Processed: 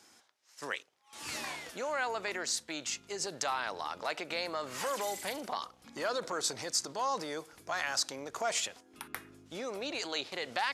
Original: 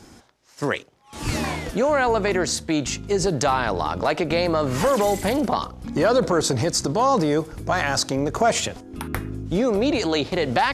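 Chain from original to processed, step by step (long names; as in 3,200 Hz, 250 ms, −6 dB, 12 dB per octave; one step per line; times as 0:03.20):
high-pass filter 1,500 Hz 6 dB per octave
level −7.5 dB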